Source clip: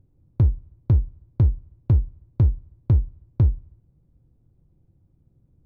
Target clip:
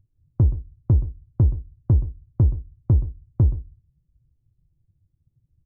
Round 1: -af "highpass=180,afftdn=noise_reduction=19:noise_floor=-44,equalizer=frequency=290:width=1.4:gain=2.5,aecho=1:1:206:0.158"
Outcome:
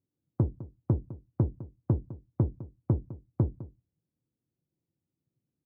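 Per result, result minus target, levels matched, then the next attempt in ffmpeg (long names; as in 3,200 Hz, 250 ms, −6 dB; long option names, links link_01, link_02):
echo 82 ms late; 250 Hz band +6.0 dB
-af "highpass=180,afftdn=noise_reduction=19:noise_floor=-44,equalizer=frequency=290:width=1.4:gain=2.5,aecho=1:1:124:0.158"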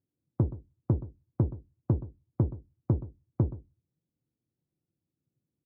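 250 Hz band +6.0 dB
-af "afftdn=noise_reduction=19:noise_floor=-44,equalizer=frequency=290:width=1.4:gain=2.5,aecho=1:1:124:0.158"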